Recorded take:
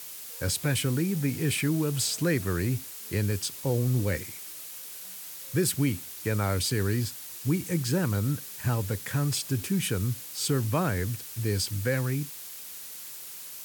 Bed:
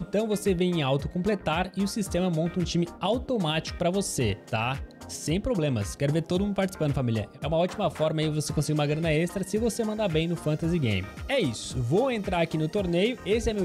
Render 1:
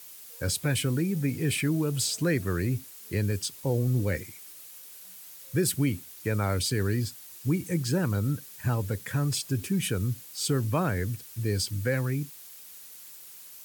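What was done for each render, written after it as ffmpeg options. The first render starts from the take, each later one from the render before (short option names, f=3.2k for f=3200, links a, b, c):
-af "afftdn=nr=7:nf=-42"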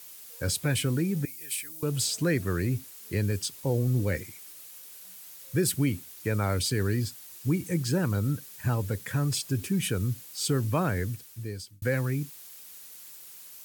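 -filter_complex "[0:a]asettb=1/sr,asplit=3[a][b][c];[a]atrim=end=1.254[d];[b]atrim=start=1.25:end=1.83,asetpts=PTS-STARTPTS,afade=t=in:d=0.004:c=qsin,afade=t=out:st=0.576:d=0.004:c=qsin,aderivative[e];[c]atrim=start=1.826[f];[d][e]acrossfade=d=0.004:c1=hsin:c2=qsin[g];[g][f]acrossfade=d=0.004:c1=qsin:c2=hsin,asplit=2[h][i];[h]atrim=end=11.82,asetpts=PTS-STARTPTS,afade=t=out:st=10.99:d=0.83[j];[i]atrim=start=11.82,asetpts=PTS-STARTPTS,afade=t=in:d=0.004:c=hsin[k];[j][k]concat=n=2:v=0:a=1"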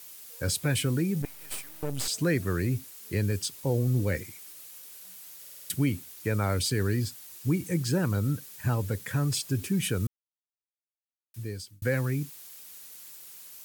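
-filter_complex "[0:a]asettb=1/sr,asplit=3[a][b][c];[a]atrim=end=1.224[d];[b]atrim=start=1.22:end=2.08,asetpts=PTS-STARTPTS,afade=t=in:d=0.004:c=qsin,afade=t=out:st=0.856:d=0.004:c=qsin,aeval=exprs='max(val(0),0)':c=same[e];[c]atrim=start=2.076[f];[d][e]acrossfade=d=0.004:c1=hsin:c2=qsin[g];[g][f]acrossfade=d=0.004:c1=qsin:c2=hsin,asplit=9[h][i][j][k][l][m][n][o][p];[h]atrim=end=5.452[q];[i]atrim=start=5.398:end=5.452[r];[j]atrim=start=5.398:end=5.452[s];[k]atrim=start=5.398:end=5.452[t];[l]atrim=start=5.398:end=5.452[u];[m]atrim=start=5.398:end=5.452[v];[n]atrim=start=5.698:end=10.07,asetpts=PTS-STARTPTS,afade=t=out:st=4.368:d=0.004:c=hsin[w];[o]atrim=start=10.07:end=11.34,asetpts=PTS-STARTPTS,volume=0[x];[p]atrim=start=11.34,asetpts=PTS-STARTPTS,afade=t=in:d=0.004:c=hsin[y];[q][r]acrossfade=d=0.004:c1=hsin:c2=hsin[z];[z][s]acrossfade=d=0.004:c1=hsin:c2=hsin[aa];[aa][t]acrossfade=d=0.004:c1=hsin:c2=hsin[ab];[ab][u]acrossfade=d=0.004:c1=hsin:c2=hsin[ac];[ac][v]acrossfade=d=0.004:c1=hsin:c2=hsin[ad];[w][x][y]concat=n=3:v=0:a=1[ae];[ad][ae]acrossfade=d=0.004:c1=hsin:c2=hsin"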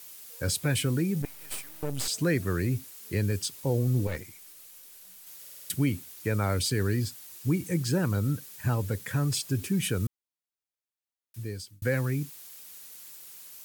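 -filter_complex "[0:a]asettb=1/sr,asplit=3[a][b][c];[a]atrim=end=4.074[d];[b]atrim=start=4.07:end=5.27,asetpts=PTS-STARTPTS,afade=t=in:d=0.004:c=qsin,afade=t=out:st=1.196:d=0.004:c=qsin,aeval=exprs='(tanh(22.4*val(0)+0.65)-tanh(0.65))/22.4':c=same[e];[c]atrim=start=5.266[f];[d][e]acrossfade=d=0.004:c1=hsin:c2=qsin[g];[g][f]acrossfade=d=0.004:c1=qsin:c2=hsin"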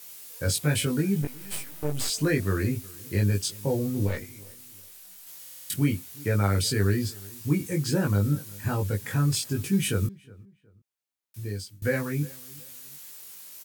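-filter_complex "[0:a]asplit=2[a][b];[b]adelay=20,volume=-2dB[c];[a][c]amix=inputs=2:normalize=0,asplit=2[d][e];[e]adelay=365,lowpass=f=2k:p=1,volume=-22.5dB,asplit=2[f][g];[g]adelay=365,lowpass=f=2k:p=1,volume=0.32[h];[d][f][h]amix=inputs=3:normalize=0"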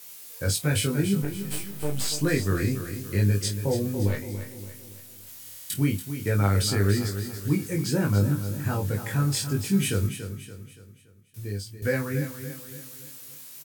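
-filter_complex "[0:a]asplit=2[a][b];[b]adelay=30,volume=-11dB[c];[a][c]amix=inputs=2:normalize=0,aecho=1:1:285|570|855|1140|1425:0.316|0.139|0.0612|0.0269|0.0119"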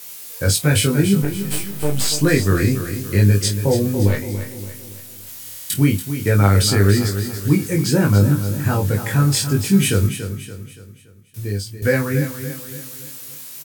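-af "volume=8.5dB,alimiter=limit=-2dB:level=0:latency=1"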